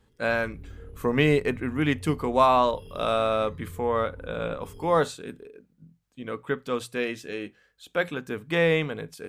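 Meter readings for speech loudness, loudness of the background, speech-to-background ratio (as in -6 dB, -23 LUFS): -26.5 LUFS, -45.0 LUFS, 18.5 dB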